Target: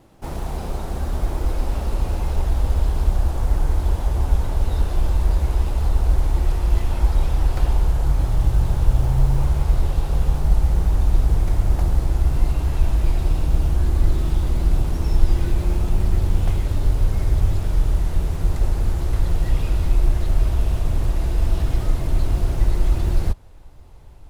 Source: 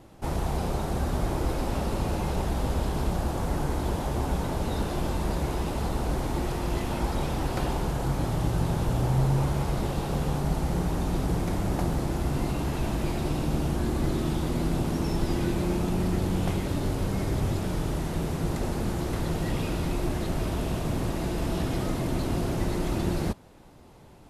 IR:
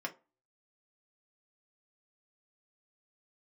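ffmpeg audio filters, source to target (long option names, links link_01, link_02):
-af "acrusher=bits=7:mode=log:mix=0:aa=0.000001,asubboost=boost=9.5:cutoff=64,volume=-1dB"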